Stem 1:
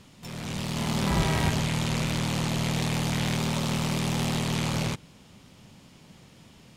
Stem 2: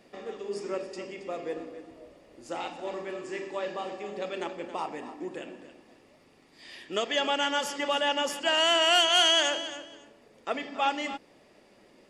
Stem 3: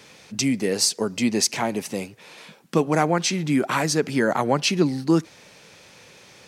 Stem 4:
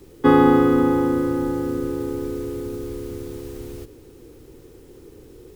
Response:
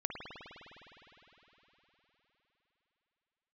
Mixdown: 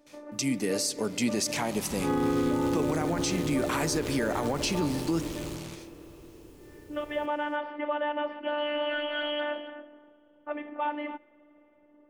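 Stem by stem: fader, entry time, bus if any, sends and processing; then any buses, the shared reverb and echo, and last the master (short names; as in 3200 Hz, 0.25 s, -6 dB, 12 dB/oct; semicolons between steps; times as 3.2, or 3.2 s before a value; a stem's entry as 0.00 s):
-15.0 dB, 0.80 s, bus A, no send, dry
0.0 dB, 0.00 s, no bus, send -23.5 dB, low-pass opened by the level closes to 1100 Hz, open at -22.5 dBFS; Gaussian blur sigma 3.9 samples; robotiser 295 Hz
-10.5 dB, 0.00 s, bus A, send -15 dB, gate with hold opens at -37 dBFS; AGC gain up to 8 dB
-7.5 dB, 1.70 s, no bus, no send, tone controls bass +3 dB, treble +3 dB; attack slew limiter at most 170 dB/s
bus A: 0.0 dB, high shelf 5600 Hz +9.5 dB; limiter -19.5 dBFS, peak gain reduction 12 dB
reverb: on, RT60 4.3 s, pre-delay 51 ms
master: limiter -18.5 dBFS, peak gain reduction 7.5 dB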